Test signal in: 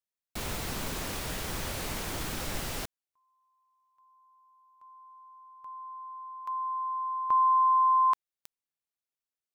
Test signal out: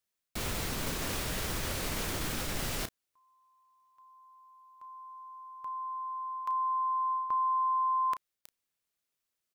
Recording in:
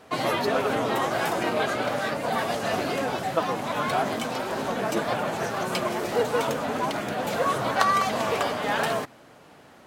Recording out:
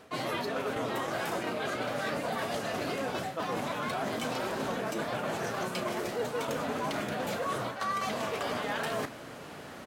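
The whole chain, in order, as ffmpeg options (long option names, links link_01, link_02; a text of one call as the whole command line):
ffmpeg -i in.wav -filter_complex "[0:a]equalizer=frequency=820:width=2.3:gain=-3,areverse,acompressor=threshold=-33dB:ratio=12:attack=0.24:release=244:knee=6:detection=rms,areverse,asplit=2[link_01][link_02];[link_02]adelay=33,volume=-12dB[link_03];[link_01][link_03]amix=inputs=2:normalize=0,volume=7dB" out.wav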